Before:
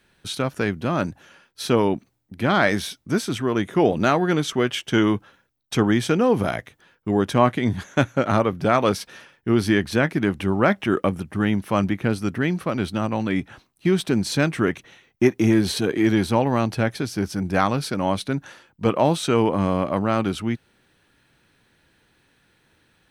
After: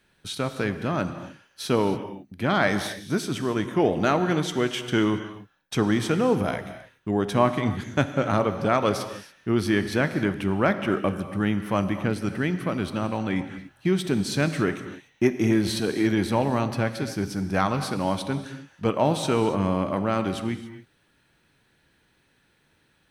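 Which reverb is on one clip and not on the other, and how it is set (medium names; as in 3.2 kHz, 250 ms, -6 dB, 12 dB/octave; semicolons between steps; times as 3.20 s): gated-style reverb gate 310 ms flat, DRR 9 dB; trim -3.5 dB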